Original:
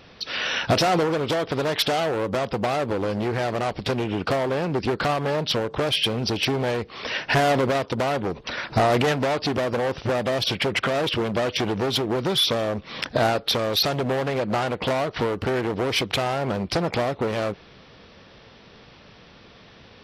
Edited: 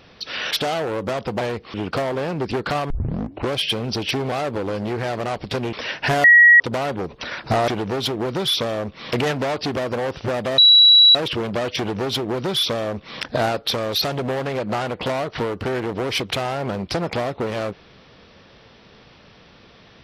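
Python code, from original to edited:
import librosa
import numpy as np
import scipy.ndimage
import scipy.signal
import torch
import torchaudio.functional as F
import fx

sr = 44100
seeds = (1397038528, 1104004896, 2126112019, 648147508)

y = fx.edit(x, sr, fx.cut(start_s=0.51, length_s=1.26),
    fx.swap(start_s=2.67, length_s=1.41, other_s=6.66, other_length_s=0.33),
    fx.tape_start(start_s=5.24, length_s=0.67),
    fx.bleep(start_s=7.5, length_s=0.36, hz=1910.0, db=-6.5),
    fx.bleep(start_s=10.39, length_s=0.57, hz=3910.0, db=-7.5),
    fx.duplicate(start_s=11.58, length_s=1.45, to_s=8.94), tone=tone)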